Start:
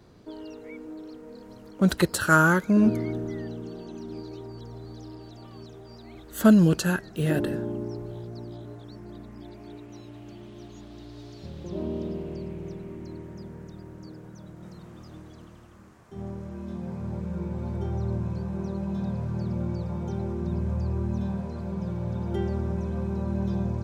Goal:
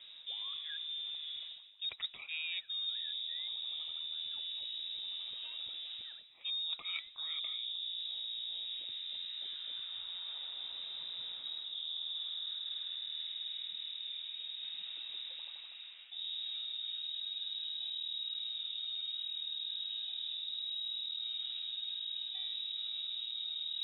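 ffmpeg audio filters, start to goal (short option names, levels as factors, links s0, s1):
-af "lowpass=f=3300:t=q:w=0.5098,lowpass=f=3300:t=q:w=0.6013,lowpass=f=3300:t=q:w=0.9,lowpass=f=3300:t=q:w=2.563,afreqshift=-3900,areverse,acompressor=threshold=0.0112:ratio=8,areverse,volume=1.12"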